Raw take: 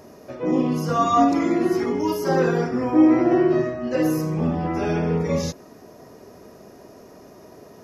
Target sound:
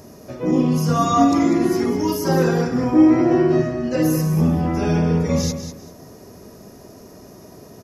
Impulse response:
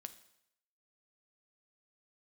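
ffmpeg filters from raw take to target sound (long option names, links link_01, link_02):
-af "bass=frequency=250:gain=8,treble=frequency=4000:gain=8,aecho=1:1:197|394|591:0.316|0.0727|0.0167"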